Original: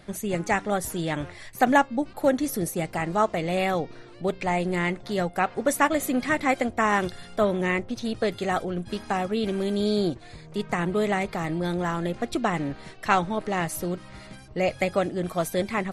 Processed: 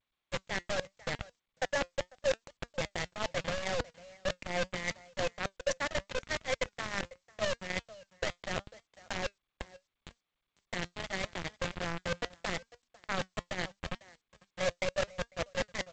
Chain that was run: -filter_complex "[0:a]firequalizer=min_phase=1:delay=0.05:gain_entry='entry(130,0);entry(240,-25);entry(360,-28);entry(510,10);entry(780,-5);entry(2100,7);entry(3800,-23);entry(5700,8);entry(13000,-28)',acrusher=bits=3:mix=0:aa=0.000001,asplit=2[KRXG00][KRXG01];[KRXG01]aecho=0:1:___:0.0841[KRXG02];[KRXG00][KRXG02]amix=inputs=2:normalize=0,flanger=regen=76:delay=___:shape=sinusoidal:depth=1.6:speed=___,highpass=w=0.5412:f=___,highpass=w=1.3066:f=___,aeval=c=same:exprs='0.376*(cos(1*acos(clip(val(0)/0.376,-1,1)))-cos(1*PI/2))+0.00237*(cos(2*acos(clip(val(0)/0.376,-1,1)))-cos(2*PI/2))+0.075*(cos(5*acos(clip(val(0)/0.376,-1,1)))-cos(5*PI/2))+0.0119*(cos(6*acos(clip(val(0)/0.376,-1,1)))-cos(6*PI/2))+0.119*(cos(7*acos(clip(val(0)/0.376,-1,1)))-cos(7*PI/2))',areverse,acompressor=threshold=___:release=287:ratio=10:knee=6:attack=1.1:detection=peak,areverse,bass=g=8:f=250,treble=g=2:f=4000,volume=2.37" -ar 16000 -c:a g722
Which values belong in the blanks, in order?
499, 4.1, 0.78, 41, 41, 0.0251